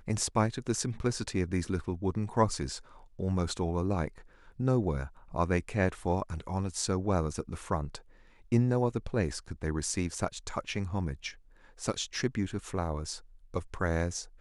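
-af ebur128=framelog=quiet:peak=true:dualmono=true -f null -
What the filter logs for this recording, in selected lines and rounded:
Integrated loudness:
  I:         -29.4 LUFS
  Threshold: -39.7 LUFS
Loudness range:
  LRA:         3.2 LU
  Threshold: -49.7 LUFS
  LRA low:   -31.9 LUFS
  LRA high:  -28.7 LUFS
True peak:
  Peak:      -12.3 dBFS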